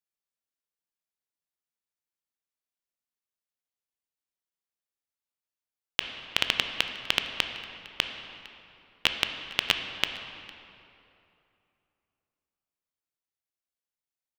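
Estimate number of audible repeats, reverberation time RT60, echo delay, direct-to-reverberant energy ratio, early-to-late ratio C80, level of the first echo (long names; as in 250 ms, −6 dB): 1, 2.8 s, 456 ms, 5.5 dB, 7.5 dB, −22.0 dB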